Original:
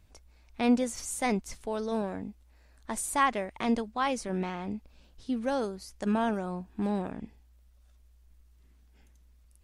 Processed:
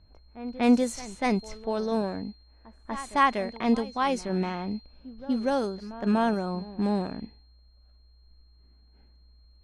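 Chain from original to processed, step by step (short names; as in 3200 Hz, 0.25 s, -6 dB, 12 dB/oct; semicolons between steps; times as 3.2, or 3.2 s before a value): harmonic-percussive split harmonic +4 dB; whine 4200 Hz -47 dBFS; pre-echo 0.242 s -16.5 dB; low-pass opened by the level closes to 1200 Hz, open at -21.5 dBFS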